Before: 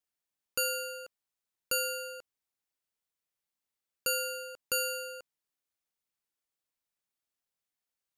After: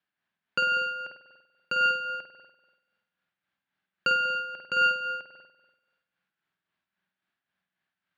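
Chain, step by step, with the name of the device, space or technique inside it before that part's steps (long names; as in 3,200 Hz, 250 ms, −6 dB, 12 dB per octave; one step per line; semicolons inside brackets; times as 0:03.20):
combo amplifier with spring reverb and tremolo (spring reverb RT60 1.2 s, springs 48 ms, chirp 75 ms, DRR 0 dB; amplitude tremolo 3.7 Hz, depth 50%; loudspeaker in its box 92–3,800 Hz, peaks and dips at 180 Hz +10 dB, 480 Hz −9 dB, 1,600 Hz +9 dB)
level +8 dB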